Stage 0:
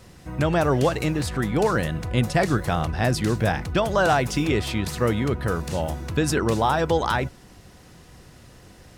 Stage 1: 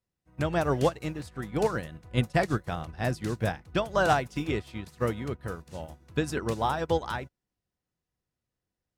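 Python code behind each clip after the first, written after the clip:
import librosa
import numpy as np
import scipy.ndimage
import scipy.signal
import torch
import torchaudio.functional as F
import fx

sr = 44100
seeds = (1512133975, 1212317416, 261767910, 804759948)

y = fx.upward_expand(x, sr, threshold_db=-42.0, expansion=2.5)
y = y * librosa.db_to_amplitude(-2.0)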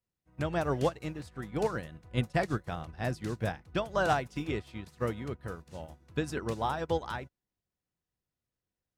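y = fx.high_shelf(x, sr, hz=8200.0, db=-3.5)
y = y * librosa.db_to_amplitude(-4.0)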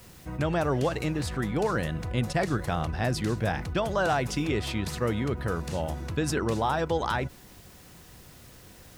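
y = fx.env_flatten(x, sr, amount_pct=70)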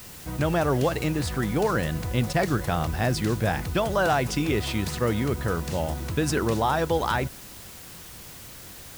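y = fx.quant_dither(x, sr, seeds[0], bits=8, dither='triangular')
y = y * librosa.db_to_amplitude(3.0)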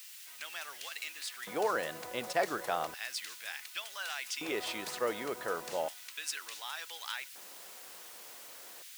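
y = fx.filter_lfo_highpass(x, sr, shape='square', hz=0.34, low_hz=530.0, high_hz=2400.0, q=1.1)
y = y * librosa.db_to_amplitude(-6.0)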